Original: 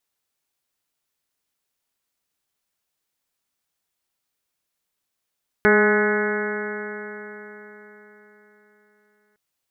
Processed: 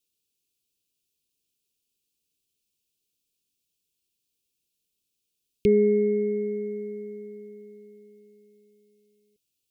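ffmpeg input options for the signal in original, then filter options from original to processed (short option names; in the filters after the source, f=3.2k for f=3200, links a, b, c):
-f lavfi -i "aevalsrc='0.1*pow(10,-3*t/4.22)*sin(2*PI*208.08*t)+0.178*pow(10,-3*t/4.22)*sin(2*PI*416.65*t)+0.0501*pow(10,-3*t/4.22)*sin(2*PI*626.19*t)+0.0501*pow(10,-3*t/4.22)*sin(2*PI*837.18*t)+0.0316*pow(10,-3*t/4.22)*sin(2*PI*1050.09*t)+0.0473*pow(10,-3*t/4.22)*sin(2*PI*1265.4*t)+0.112*pow(10,-3*t/4.22)*sin(2*PI*1483.56*t)+0.0944*pow(10,-3*t/4.22)*sin(2*PI*1705.03*t)+0.0501*pow(10,-3*t/4.22)*sin(2*PI*1930.23*t)+0.0473*pow(10,-3*t/4.22)*sin(2*PI*2159.6*t)':d=3.71:s=44100"
-af "asuperstop=centerf=1100:order=20:qfactor=0.57"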